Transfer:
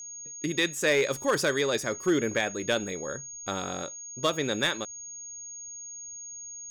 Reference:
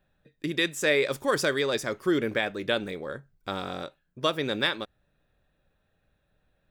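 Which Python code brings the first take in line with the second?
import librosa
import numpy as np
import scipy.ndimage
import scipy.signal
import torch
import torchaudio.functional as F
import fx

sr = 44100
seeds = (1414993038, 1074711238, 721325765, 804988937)

y = fx.fix_declip(x, sr, threshold_db=-17.0)
y = fx.notch(y, sr, hz=6600.0, q=30.0)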